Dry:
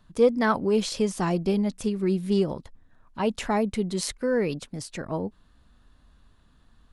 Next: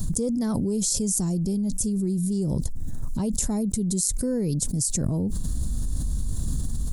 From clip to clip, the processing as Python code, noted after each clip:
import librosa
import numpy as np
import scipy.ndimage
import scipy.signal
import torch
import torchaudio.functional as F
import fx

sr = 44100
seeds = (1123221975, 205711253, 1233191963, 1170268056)

y = fx.curve_eq(x, sr, hz=(140.0, 1400.0, 2700.0, 7200.0), db=(0, -26, -26, 6))
y = fx.env_flatten(y, sr, amount_pct=100)
y = y * 10.0 ** (1.5 / 20.0)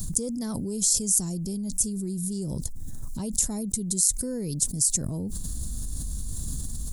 y = fx.high_shelf(x, sr, hz=3600.0, db=11.0)
y = y * 10.0 ** (-6.0 / 20.0)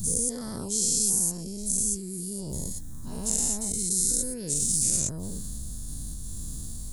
y = fx.spec_dilate(x, sr, span_ms=240)
y = y * 10.0 ** (-8.5 / 20.0)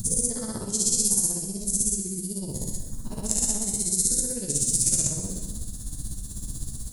y = x * (1.0 - 0.87 / 2.0 + 0.87 / 2.0 * np.cos(2.0 * np.pi * 16.0 * (np.arange(len(x)) / sr)))
y = fx.rev_gated(y, sr, seeds[0], gate_ms=440, shape='falling', drr_db=3.0)
y = y * 10.0 ** (4.0 / 20.0)